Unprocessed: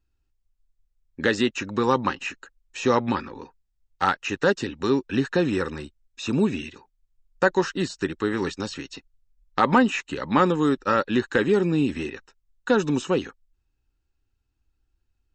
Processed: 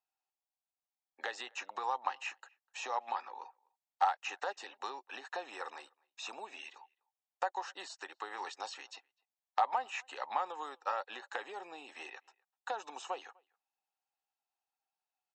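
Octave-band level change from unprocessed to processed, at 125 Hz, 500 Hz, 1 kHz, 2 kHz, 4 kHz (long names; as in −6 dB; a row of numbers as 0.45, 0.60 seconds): below −40 dB, −21.5 dB, −8.5 dB, −15.0 dB, −12.5 dB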